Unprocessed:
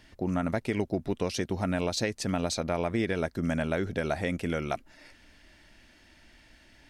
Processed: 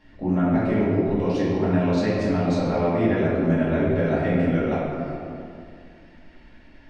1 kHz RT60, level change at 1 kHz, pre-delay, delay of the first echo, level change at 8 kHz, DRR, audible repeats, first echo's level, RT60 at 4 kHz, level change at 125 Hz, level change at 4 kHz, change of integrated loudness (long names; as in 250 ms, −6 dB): 2.2 s, +6.5 dB, 4 ms, no echo audible, below −10 dB, −10.0 dB, no echo audible, no echo audible, 1.3 s, +9.5 dB, −3.5 dB, +8.0 dB